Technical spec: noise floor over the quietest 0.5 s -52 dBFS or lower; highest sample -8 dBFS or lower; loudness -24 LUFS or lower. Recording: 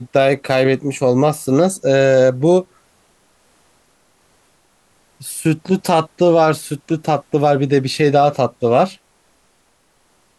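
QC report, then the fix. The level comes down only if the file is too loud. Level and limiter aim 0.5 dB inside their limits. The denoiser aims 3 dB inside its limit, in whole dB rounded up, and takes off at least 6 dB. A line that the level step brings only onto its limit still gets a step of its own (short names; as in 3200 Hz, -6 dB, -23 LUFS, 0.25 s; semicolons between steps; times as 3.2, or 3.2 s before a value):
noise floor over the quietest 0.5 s -59 dBFS: OK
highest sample -3.5 dBFS: fail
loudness -15.5 LUFS: fail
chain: gain -9 dB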